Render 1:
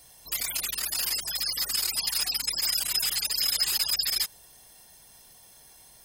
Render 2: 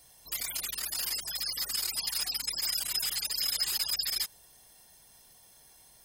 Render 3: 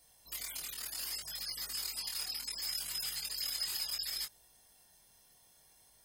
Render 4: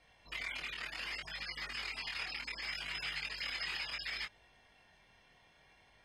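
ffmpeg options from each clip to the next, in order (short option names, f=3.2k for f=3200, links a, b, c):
-af "bandreject=f=2.6k:w=24,volume=-4.5dB"
-af "flanger=delay=19.5:depth=5.4:speed=0.66,volume=-3.5dB"
-af "lowpass=f=2.4k:t=q:w=2.4,volume=4.5dB"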